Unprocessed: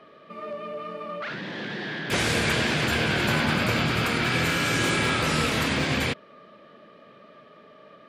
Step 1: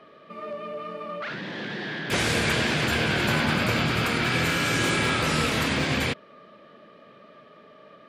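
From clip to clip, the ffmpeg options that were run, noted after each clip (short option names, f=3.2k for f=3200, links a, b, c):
-af anull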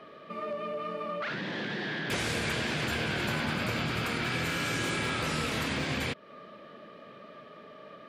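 -af "acompressor=threshold=-34dB:ratio=2.5,volume=1.5dB"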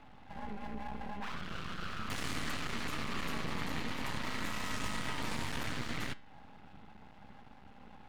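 -af "afreqshift=-380,aeval=exprs='max(val(0),0)':c=same,flanger=delay=9.1:depth=1.9:regen=88:speed=1:shape=triangular,volume=1.5dB"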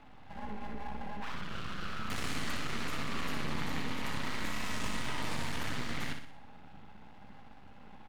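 -af "aecho=1:1:61|122|183|244|305|366:0.447|0.219|0.107|0.0526|0.0258|0.0126"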